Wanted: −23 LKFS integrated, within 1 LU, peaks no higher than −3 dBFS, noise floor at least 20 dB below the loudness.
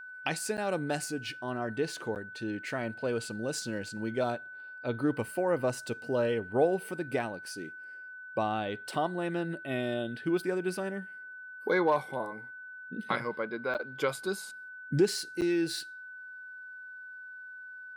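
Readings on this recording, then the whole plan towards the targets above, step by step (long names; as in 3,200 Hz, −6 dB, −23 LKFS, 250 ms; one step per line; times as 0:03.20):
number of dropouts 4; longest dropout 8.7 ms; interfering tone 1,500 Hz; level of the tone −43 dBFS; integrated loudness −32.5 LKFS; sample peak −14.5 dBFS; target loudness −23.0 LKFS
→ repair the gap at 0:00.57/0:02.15/0:13.74/0:15.41, 8.7 ms
notch filter 1,500 Hz, Q 30
level +9.5 dB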